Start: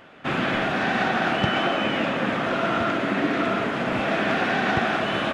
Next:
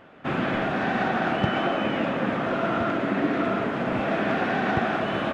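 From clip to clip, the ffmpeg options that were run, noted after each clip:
ffmpeg -i in.wav -af "highshelf=frequency=2000:gain=-9.5" out.wav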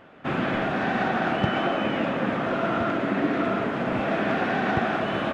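ffmpeg -i in.wav -af anull out.wav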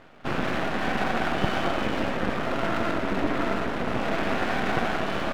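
ffmpeg -i in.wav -af "aeval=exprs='max(val(0),0)':channel_layout=same,volume=2.5dB" out.wav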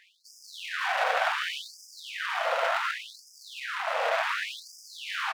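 ffmpeg -i in.wav -af "aecho=1:1:820:0.376,afftfilt=real='re*gte(b*sr/1024,450*pow(4900/450,0.5+0.5*sin(2*PI*0.68*pts/sr)))':imag='im*gte(b*sr/1024,450*pow(4900/450,0.5+0.5*sin(2*PI*0.68*pts/sr)))':win_size=1024:overlap=0.75,volume=2dB" out.wav

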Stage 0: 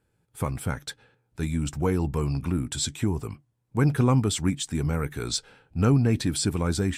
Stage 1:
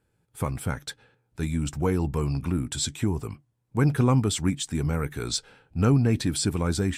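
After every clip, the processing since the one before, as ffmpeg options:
ffmpeg -i in.wav -af anull out.wav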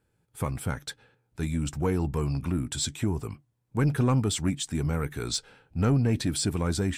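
ffmpeg -i in.wav -af "asoftclip=type=tanh:threshold=-14.5dB,volume=-1dB" out.wav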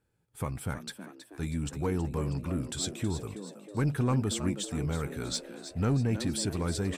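ffmpeg -i in.wav -filter_complex "[0:a]asplit=6[link_01][link_02][link_03][link_04][link_05][link_06];[link_02]adelay=321,afreqshift=100,volume=-11.5dB[link_07];[link_03]adelay=642,afreqshift=200,volume=-17.5dB[link_08];[link_04]adelay=963,afreqshift=300,volume=-23.5dB[link_09];[link_05]adelay=1284,afreqshift=400,volume=-29.6dB[link_10];[link_06]adelay=1605,afreqshift=500,volume=-35.6dB[link_11];[link_01][link_07][link_08][link_09][link_10][link_11]amix=inputs=6:normalize=0,volume=-4dB" out.wav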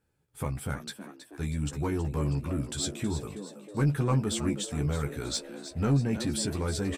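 ffmpeg -i in.wav -filter_complex "[0:a]asplit=2[link_01][link_02];[link_02]adelay=14,volume=-5dB[link_03];[link_01][link_03]amix=inputs=2:normalize=0" out.wav

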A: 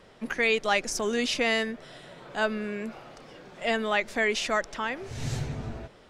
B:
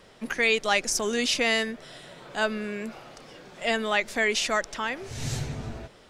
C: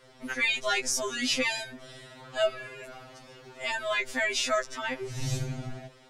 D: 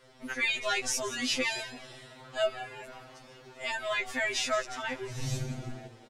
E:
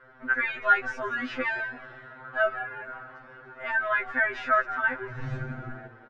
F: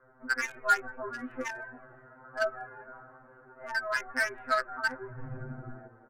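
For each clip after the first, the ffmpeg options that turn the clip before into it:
ffmpeg -i in.wav -af "highshelf=frequency=3500:gain=7" out.wav
ffmpeg -i in.wav -af "afftfilt=real='re*2.45*eq(mod(b,6),0)':imag='im*2.45*eq(mod(b,6),0)':win_size=2048:overlap=0.75" out.wav
ffmpeg -i in.wav -filter_complex "[0:a]asplit=5[link_01][link_02][link_03][link_04][link_05];[link_02]adelay=174,afreqshift=110,volume=-15dB[link_06];[link_03]adelay=348,afreqshift=220,volume=-22.7dB[link_07];[link_04]adelay=522,afreqshift=330,volume=-30.5dB[link_08];[link_05]adelay=696,afreqshift=440,volume=-38.2dB[link_09];[link_01][link_06][link_07][link_08][link_09]amix=inputs=5:normalize=0,volume=-2.5dB" out.wav
ffmpeg -i in.wav -af "lowpass=frequency=1500:width_type=q:width=6.1" out.wav
ffmpeg -i in.wav -filter_complex "[0:a]flanger=delay=2.4:depth=1.6:regen=-79:speed=1.6:shape=triangular,acrossover=split=360|1500[link_01][link_02][link_03];[link_03]acrusher=bits=4:mix=0:aa=0.5[link_04];[link_01][link_02][link_04]amix=inputs=3:normalize=0" out.wav

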